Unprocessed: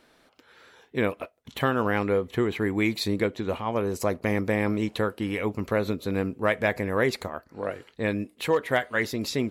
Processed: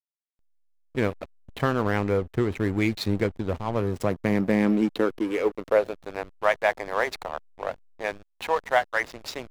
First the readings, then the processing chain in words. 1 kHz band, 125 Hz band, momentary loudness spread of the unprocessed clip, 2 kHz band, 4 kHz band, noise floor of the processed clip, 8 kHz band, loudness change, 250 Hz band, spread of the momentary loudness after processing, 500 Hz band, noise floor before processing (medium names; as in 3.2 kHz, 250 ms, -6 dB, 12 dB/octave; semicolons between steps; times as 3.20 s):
+2.5 dB, +1.0 dB, 8 LU, -0.5 dB, -2.0 dB, -71 dBFS, -4.0 dB, +1.0 dB, +1.0 dB, 12 LU, +0.5 dB, -62 dBFS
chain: high-pass sweep 82 Hz -> 750 Hz, 3.57–6.13 s; hysteresis with a dead band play -28 dBFS